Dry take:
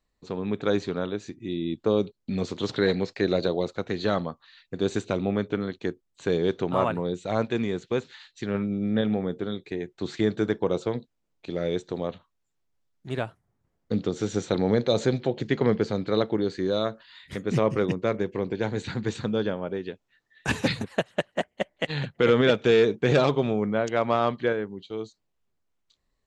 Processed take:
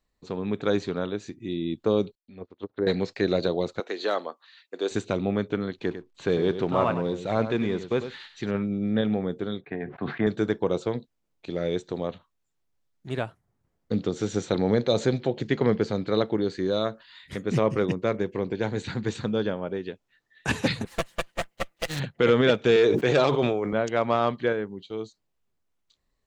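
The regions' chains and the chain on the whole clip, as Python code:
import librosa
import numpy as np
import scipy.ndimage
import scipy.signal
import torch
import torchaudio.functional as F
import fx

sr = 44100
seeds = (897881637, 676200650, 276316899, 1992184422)

y = fx.chain(x, sr, fx.peak_eq(hz=150.0, db=-12.0, octaves=0.74),
    fx.env_lowpass_down(base_hz=610.0, full_db=-24.5),
    fx.upward_expand(threshold_db=-44.0, expansion=2.5), at=(2.15, 2.87))
y = fx.chain(y, sr, fx.highpass(hz=340.0, slope=24),
    fx.clip_hard(threshold_db=-15.0), at=(3.8, 4.91))
y = fx.chain(y, sr, fx.law_mismatch(coded='mu'),
    fx.lowpass(hz=4800.0, slope=12),
    fx.echo_single(ms=99, db=-11.0), at=(5.78, 8.51))
y = fx.chain(y, sr, fx.cabinet(low_hz=100.0, low_slope=12, high_hz=2400.0, hz=(140.0, 240.0, 350.0, 720.0, 1100.0, 1600.0), db=(4, 4, -7, 10, 7, 7)),
    fx.sustainer(db_per_s=97.0), at=(9.61, 10.27))
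y = fx.chain(y, sr, fx.lower_of_two(delay_ms=5.9),
    fx.high_shelf(hz=6500.0, db=9.5), at=(20.85, 22.0))
y = fx.chain(y, sr, fx.highpass(hz=150.0, slope=12),
    fx.peak_eq(hz=210.0, db=-11.5, octaves=0.42),
    fx.sustainer(db_per_s=31.0), at=(22.76, 23.73))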